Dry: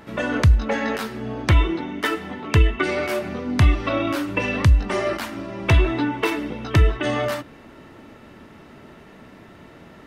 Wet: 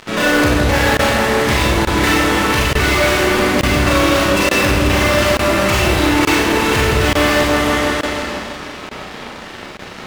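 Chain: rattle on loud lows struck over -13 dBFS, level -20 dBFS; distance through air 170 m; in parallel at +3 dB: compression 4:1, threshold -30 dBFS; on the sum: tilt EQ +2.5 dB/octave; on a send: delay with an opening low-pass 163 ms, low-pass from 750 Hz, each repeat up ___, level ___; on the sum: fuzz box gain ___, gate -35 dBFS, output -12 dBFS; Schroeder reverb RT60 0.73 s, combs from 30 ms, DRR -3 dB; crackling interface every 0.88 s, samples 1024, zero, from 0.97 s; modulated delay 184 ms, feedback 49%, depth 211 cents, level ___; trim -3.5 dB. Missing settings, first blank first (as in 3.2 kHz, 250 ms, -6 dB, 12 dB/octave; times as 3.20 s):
1 oct, -3 dB, 31 dB, -21 dB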